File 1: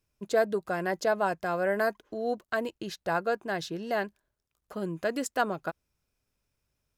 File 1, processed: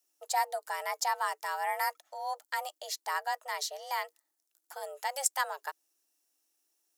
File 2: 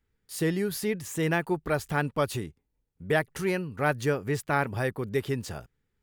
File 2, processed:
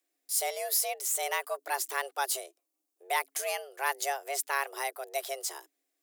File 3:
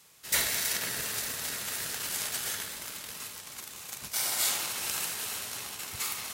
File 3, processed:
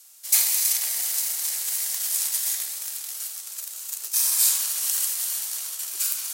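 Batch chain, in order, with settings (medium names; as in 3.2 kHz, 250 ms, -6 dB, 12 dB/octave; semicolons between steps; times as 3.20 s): tone controls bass -11 dB, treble +15 dB; frequency shift +270 Hz; trim -4.5 dB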